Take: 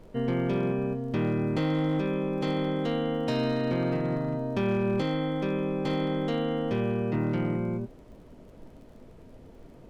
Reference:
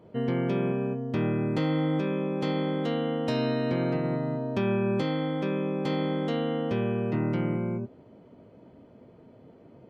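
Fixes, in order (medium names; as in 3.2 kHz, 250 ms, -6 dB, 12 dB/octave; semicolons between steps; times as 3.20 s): clip repair -21 dBFS; de-click; noise print and reduce 6 dB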